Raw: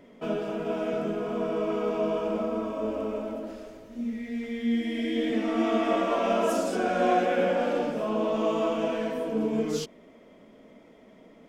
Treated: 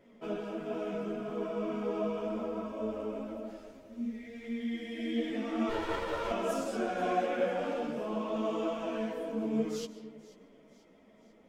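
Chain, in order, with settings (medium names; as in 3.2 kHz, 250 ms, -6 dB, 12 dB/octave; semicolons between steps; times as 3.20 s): 5.69–6.31 s: comb filter that takes the minimum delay 2.1 ms; feedback echo behind a high-pass 490 ms, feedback 52%, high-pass 3 kHz, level -19 dB; on a send at -13 dB: reverberation RT60 2.1 s, pre-delay 95 ms; on the sum: three-phase chorus; trim -4 dB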